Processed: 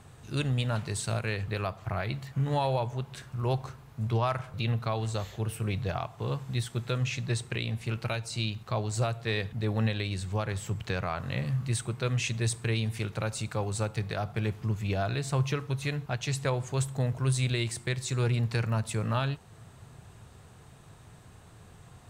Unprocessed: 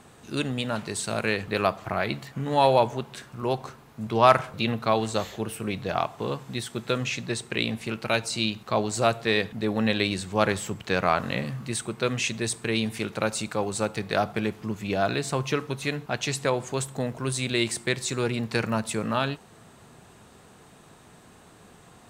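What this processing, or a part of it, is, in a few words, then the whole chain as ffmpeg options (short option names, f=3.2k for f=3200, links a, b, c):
car stereo with a boomy subwoofer: -af "lowshelf=f=160:t=q:w=1.5:g=9.5,alimiter=limit=-14.5dB:level=0:latency=1:release=383,volume=-4dB"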